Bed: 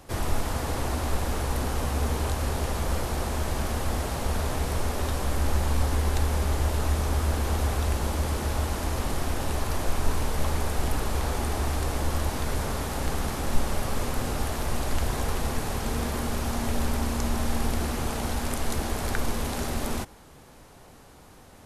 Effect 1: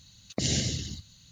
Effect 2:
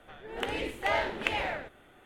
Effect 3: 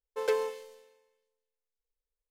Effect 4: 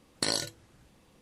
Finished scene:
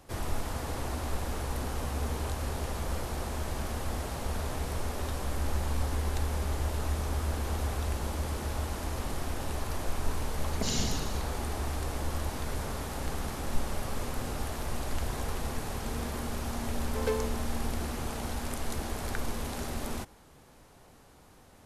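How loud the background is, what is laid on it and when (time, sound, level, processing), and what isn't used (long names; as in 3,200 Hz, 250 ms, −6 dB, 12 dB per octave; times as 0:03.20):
bed −6 dB
0:10.23: mix in 1 −5.5 dB + comb filter 4.6 ms, depth 57%
0:16.79: mix in 3 −3 dB
not used: 2, 4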